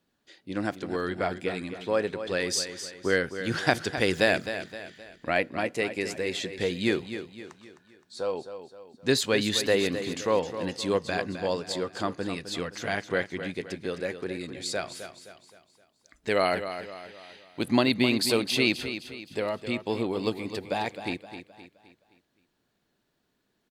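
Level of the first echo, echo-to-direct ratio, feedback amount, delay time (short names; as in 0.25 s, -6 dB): -10.5 dB, -9.5 dB, 43%, 0.26 s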